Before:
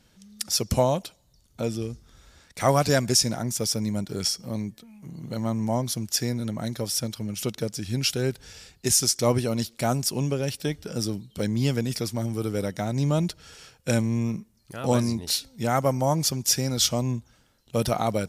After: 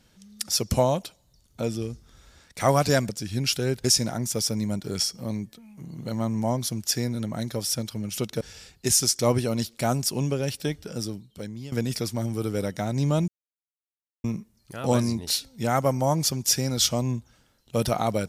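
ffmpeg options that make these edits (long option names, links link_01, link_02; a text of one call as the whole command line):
ffmpeg -i in.wav -filter_complex "[0:a]asplit=7[link_01][link_02][link_03][link_04][link_05][link_06][link_07];[link_01]atrim=end=3.092[link_08];[link_02]atrim=start=7.658:end=8.412[link_09];[link_03]atrim=start=3.088:end=7.662[link_10];[link_04]atrim=start=8.408:end=11.72,asetpts=PTS-STARTPTS,afade=type=out:start_time=2.242:duration=1.07:silence=0.125893[link_11];[link_05]atrim=start=11.72:end=13.28,asetpts=PTS-STARTPTS,afade=type=in:duration=0.004:curve=hsin:silence=0.125893,afade=type=out:start_time=1.556:duration=0.004:curve=hsin[link_12];[link_06]atrim=start=13.28:end=14.24,asetpts=PTS-STARTPTS,volume=0[link_13];[link_07]atrim=start=14.24,asetpts=PTS-STARTPTS,afade=type=in:duration=0.004:curve=hsin[link_14];[link_08][link_09]acrossfade=duration=0.004:curve1=hsin:curve2=hsin[link_15];[link_15][link_10]acrossfade=duration=0.004:curve1=hsin:curve2=hsin[link_16];[link_11][link_12][link_13][link_14]concat=n=4:v=0:a=1[link_17];[link_16][link_17]acrossfade=duration=0.004:curve1=hsin:curve2=hsin" out.wav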